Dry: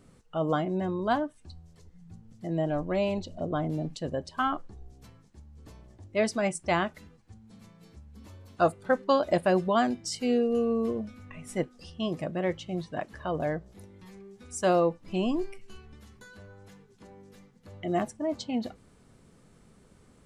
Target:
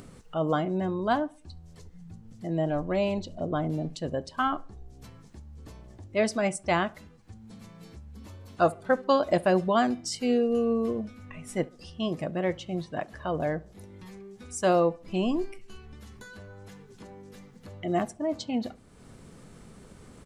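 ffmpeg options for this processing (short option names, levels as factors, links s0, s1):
-filter_complex "[0:a]asplit=2[s0][s1];[s1]adelay=69,lowpass=f=1700:p=1,volume=0.0794,asplit=2[s2][s3];[s3]adelay=69,lowpass=f=1700:p=1,volume=0.4,asplit=2[s4][s5];[s5]adelay=69,lowpass=f=1700:p=1,volume=0.4[s6];[s2][s4][s6]amix=inputs=3:normalize=0[s7];[s0][s7]amix=inputs=2:normalize=0,acompressor=mode=upward:threshold=0.00891:ratio=2.5,volume=1.12"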